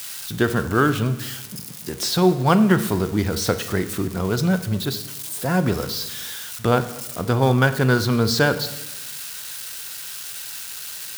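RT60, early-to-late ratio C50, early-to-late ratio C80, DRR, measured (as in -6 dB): 1.0 s, 12.5 dB, 15.0 dB, 11.0 dB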